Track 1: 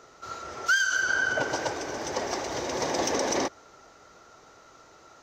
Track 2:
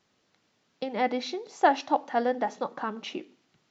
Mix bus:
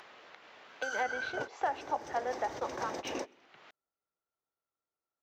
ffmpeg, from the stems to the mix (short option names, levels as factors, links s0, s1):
-filter_complex "[0:a]equalizer=f=6200:t=o:w=1.7:g=-5.5,volume=0.335[s0];[1:a]acrossover=split=450 3200:gain=0.0891 1 0.1[s1][s2][s3];[s1][s2][s3]amix=inputs=3:normalize=0,acompressor=mode=upward:threshold=0.0251:ratio=2.5,volume=0.708,asplit=2[s4][s5];[s5]apad=whole_len=230425[s6];[s0][s6]sidechaingate=range=0.0224:threshold=0.00562:ratio=16:detection=peak[s7];[s7][s4]amix=inputs=2:normalize=0,alimiter=limit=0.0841:level=0:latency=1:release=347"